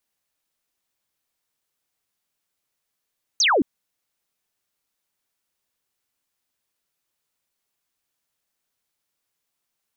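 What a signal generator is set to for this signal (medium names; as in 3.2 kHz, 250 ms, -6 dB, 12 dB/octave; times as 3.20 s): laser zap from 6.7 kHz, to 230 Hz, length 0.22 s sine, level -15 dB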